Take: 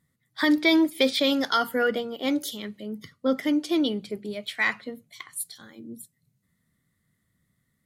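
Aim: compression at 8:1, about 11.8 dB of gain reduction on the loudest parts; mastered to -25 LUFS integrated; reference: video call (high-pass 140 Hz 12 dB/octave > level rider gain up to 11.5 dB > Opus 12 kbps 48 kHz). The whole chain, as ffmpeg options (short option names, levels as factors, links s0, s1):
-af "acompressor=threshold=0.0355:ratio=8,highpass=140,dynaudnorm=m=3.76,volume=3.16" -ar 48000 -c:a libopus -b:a 12k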